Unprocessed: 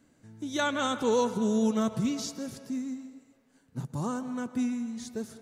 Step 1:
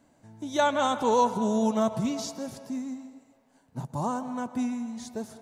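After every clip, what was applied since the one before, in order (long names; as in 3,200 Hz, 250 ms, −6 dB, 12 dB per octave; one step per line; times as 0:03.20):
flat-topped bell 780 Hz +9 dB 1 octave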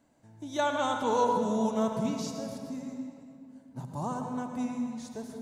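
convolution reverb RT60 2.4 s, pre-delay 64 ms, DRR 4 dB
level −5 dB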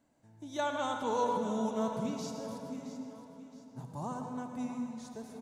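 repeating echo 668 ms, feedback 39%, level −13 dB
level −5 dB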